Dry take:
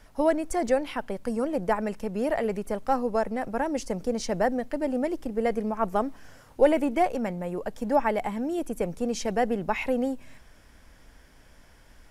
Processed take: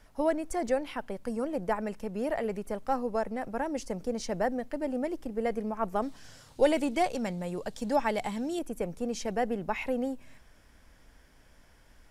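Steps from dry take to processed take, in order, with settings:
0:06.02–0:08.59: octave-band graphic EQ 125/4,000/8,000 Hz +6/+11/+8 dB
level −4.5 dB

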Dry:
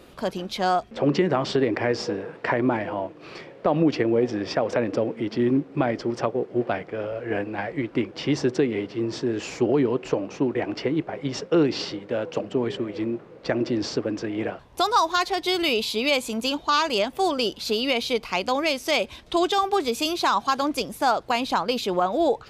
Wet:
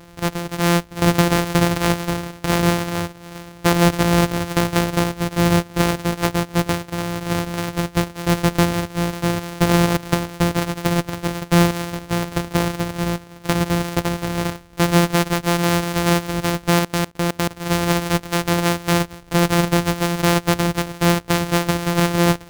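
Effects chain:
samples sorted by size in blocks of 256 samples
0:16.79–0:17.51: output level in coarse steps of 24 dB
level +5 dB

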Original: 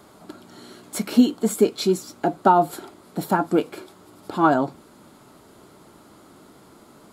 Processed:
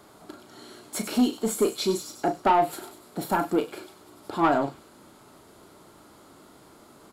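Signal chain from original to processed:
soft clipping −11 dBFS, distortion −14 dB
on a send: delay with a high-pass on its return 98 ms, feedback 53%, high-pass 3,800 Hz, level −8 dB
on the sum: pitch vibrato 12 Hz 7.4 cents
parametric band 190 Hz −4 dB 1.2 octaves
double-tracking delay 36 ms −8.5 dB
level −2 dB

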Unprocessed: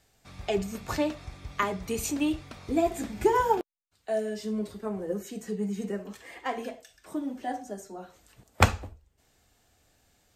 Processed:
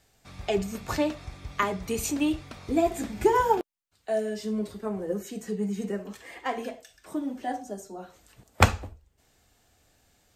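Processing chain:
0:07.55–0:07.98: parametric band 1,900 Hz −2.5 dB → −9.5 dB 0.83 octaves
level +1.5 dB

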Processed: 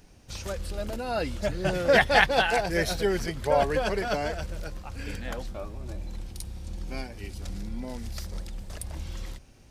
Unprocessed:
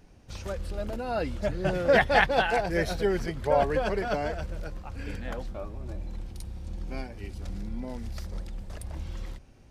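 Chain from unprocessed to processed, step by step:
high-shelf EQ 3,000 Hz +9 dB

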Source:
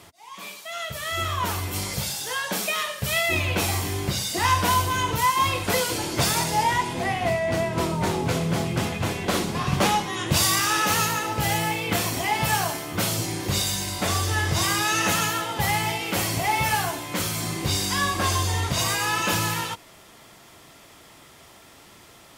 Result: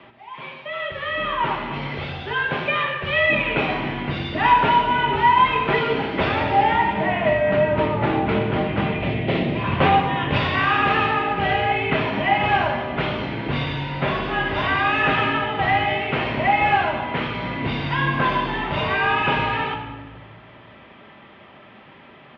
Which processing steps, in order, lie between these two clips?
single-sideband voice off tune −53 Hz 160–3,100 Hz
0:08.92–0:09.64: flat-topped bell 1,200 Hz −10 dB 1.1 octaves
far-end echo of a speakerphone 120 ms, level −24 dB
rectangular room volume 1,400 cubic metres, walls mixed, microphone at 1.2 metres
level +3.5 dB

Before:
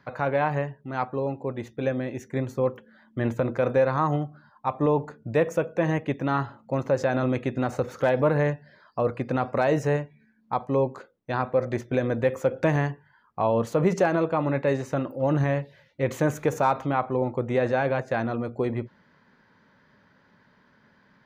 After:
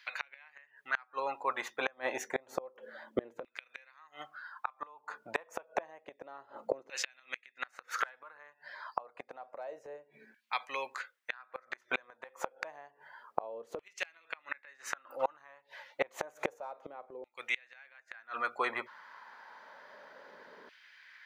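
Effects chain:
auto-filter high-pass saw down 0.29 Hz 410–2,700 Hz
gate with flip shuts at −23 dBFS, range −32 dB
level +6 dB

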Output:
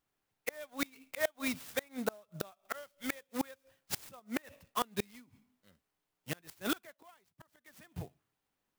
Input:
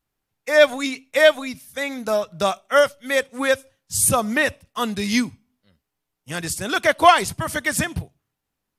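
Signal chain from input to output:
low-shelf EQ 140 Hz −10 dB
0:00.62–0:01.40: volume swells 397 ms
0:02.74–0:03.51: parametric band 11,000 Hz +6 dB 2.9 octaves
0:04.19–0:04.82: downward compressor 4 to 1, threshold −27 dBFS, peak gain reduction 10.5 dB
gate with flip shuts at −17 dBFS, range −31 dB
0:06.82–0:07.76: duck −13 dB, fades 0.20 s
converter with an unsteady clock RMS 0.038 ms
level −2.5 dB

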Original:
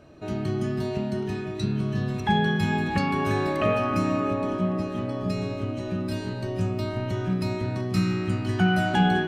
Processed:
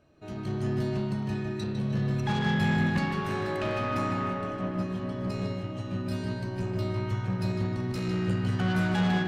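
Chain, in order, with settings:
parametric band 400 Hz −2.5 dB 2.6 octaves
soft clipping −25.5 dBFS, distortion −10 dB
on a send: feedback echo with a low-pass in the loop 153 ms, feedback 62%, low-pass 4,000 Hz, level −3.5 dB
on the sum: expander for the loud parts 1.5 to 1, over −44 dBFS

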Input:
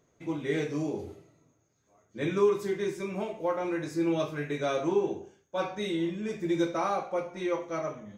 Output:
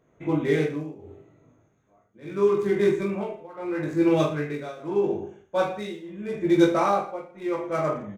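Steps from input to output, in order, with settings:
adaptive Wiener filter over 9 samples
shaped tremolo triangle 0.79 Hz, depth 95%
reverse bouncing-ball delay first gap 20 ms, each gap 1.25×, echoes 5
level +8 dB

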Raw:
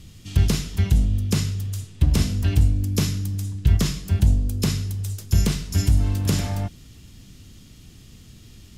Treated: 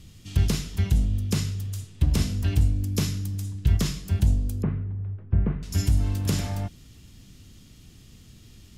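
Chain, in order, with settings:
0:04.62–0:05.63: Bessel low-pass filter 1,200 Hz, order 6
level −3.5 dB

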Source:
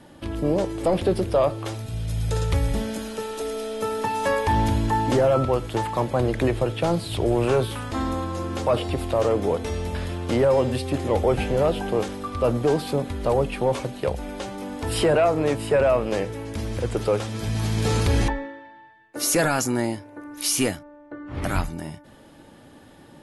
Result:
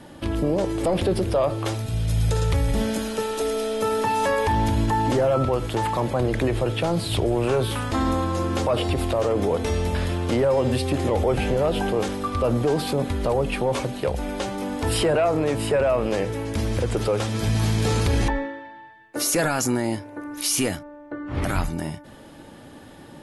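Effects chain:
brickwall limiter −18.5 dBFS, peak gain reduction 7 dB
level +4.5 dB

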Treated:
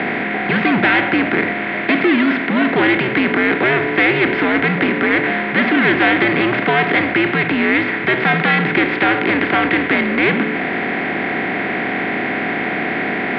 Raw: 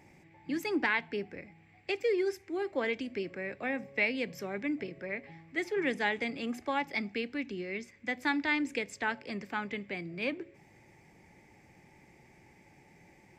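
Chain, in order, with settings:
compressor on every frequency bin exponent 0.4
leveller curve on the samples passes 3
single-sideband voice off tune −120 Hz 330–3,500 Hz
level +4.5 dB

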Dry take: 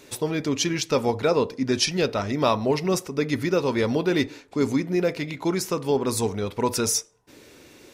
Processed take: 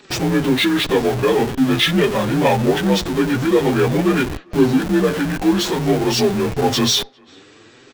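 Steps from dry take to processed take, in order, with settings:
partials spread apart or drawn together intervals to 85%
flanger 0.48 Hz, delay 4.7 ms, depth 6.4 ms, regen +10%
in parallel at −5 dB: comparator with hysteresis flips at −41.5 dBFS
on the sum: far-end echo of a speakerphone 400 ms, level −28 dB
level +9 dB

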